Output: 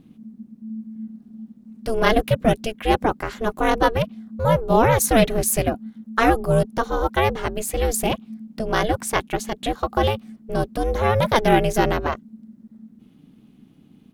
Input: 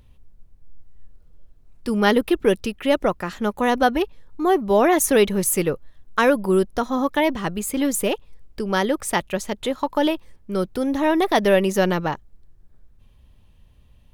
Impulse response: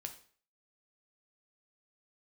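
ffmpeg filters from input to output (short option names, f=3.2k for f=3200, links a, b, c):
-filter_complex "[0:a]asplit=2[a][b];[b]asetrate=29433,aresample=44100,atempo=1.49831,volume=-16dB[c];[a][c]amix=inputs=2:normalize=0,aeval=exprs='val(0)*sin(2*PI*220*n/s)':c=same,volume=3dB"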